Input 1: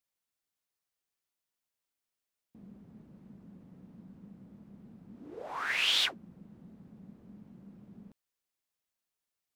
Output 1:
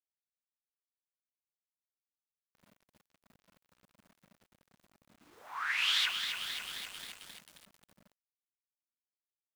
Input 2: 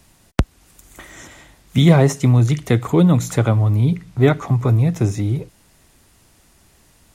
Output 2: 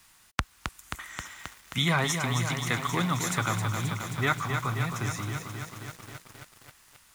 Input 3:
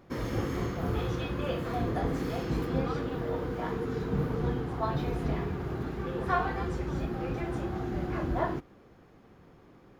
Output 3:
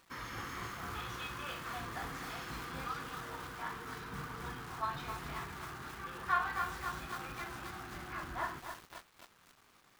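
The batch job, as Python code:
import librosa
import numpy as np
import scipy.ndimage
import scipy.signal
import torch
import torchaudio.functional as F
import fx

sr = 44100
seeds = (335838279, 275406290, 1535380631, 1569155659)

y = fx.low_shelf_res(x, sr, hz=780.0, db=-13.0, q=1.5)
y = fx.quant_dither(y, sr, seeds[0], bits=10, dither='none')
y = fx.echo_crushed(y, sr, ms=266, feedback_pct=80, bits=7, wet_db=-6.0)
y = F.gain(torch.from_numpy(y), -3.0).numpy()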